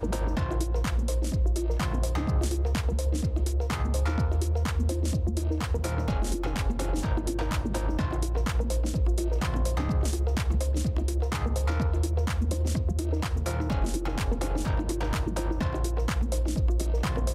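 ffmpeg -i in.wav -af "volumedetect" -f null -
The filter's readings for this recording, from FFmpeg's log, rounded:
mean_volume: -26.0 dB
max_volume: -16.6 dB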